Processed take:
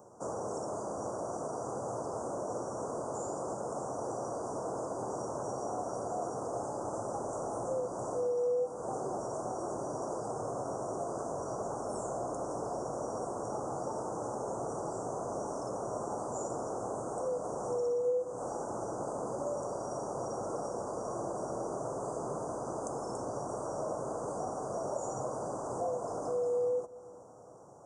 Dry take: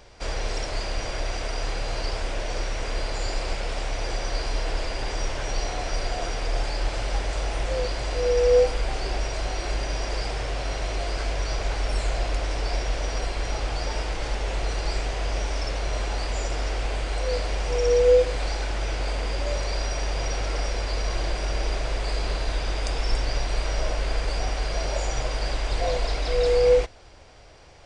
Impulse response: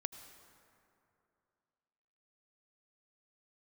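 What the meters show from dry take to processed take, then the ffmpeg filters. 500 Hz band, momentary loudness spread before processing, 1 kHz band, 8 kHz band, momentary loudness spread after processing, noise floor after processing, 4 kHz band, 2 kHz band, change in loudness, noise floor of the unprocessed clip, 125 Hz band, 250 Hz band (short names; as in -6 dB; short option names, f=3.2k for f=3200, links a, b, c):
-7.5 dB, 8 LU, -3.5 dB, -7.5 dB, 4 LU, -41 dBFS, under -25 dB, -24.5 dB, -9.5 dB, -31 dBFS, -16.0 dB, -1.5 dB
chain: -filter_complex "[0:a]highpass=f=140:w=0.5412,highpass=f=140:w=1.3066,acompressor=threshold=-30dB:ratio=5,asuperstop=centerf=2900:order=12:qfactor=0.56,asplit=2[a][b];[1:a]atrim=start_sample=2205,lowshelf=f=410:g=8[c];[b][c]afir=irnorm=-1:irlink=0,volume=-7dB[d];[a][d]amix=inputs=2:normalize=0,volume=-4dB"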